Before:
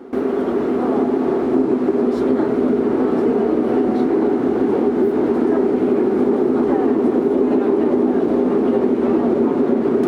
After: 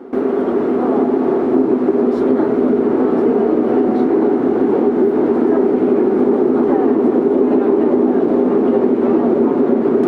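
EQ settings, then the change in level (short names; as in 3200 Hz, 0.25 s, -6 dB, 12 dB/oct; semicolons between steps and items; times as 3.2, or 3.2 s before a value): low shelf 110 Hz -9.5 dB; high shelf 2400 Hz -9 dB; +4.0 dB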